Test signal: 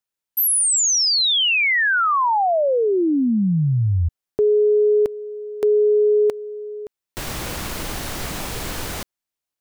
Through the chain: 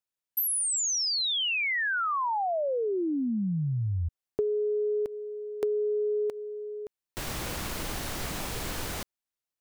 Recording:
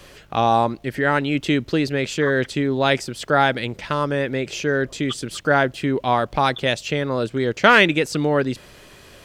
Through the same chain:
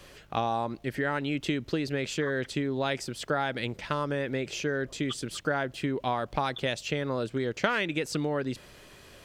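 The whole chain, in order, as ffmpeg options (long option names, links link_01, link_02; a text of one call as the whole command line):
ffmpeg -i in.wav -af "acompressor=threshold=-22dB:ratio=4:attack=35:release=267:knee=1:detection=peak,volume=-6dB" out.wav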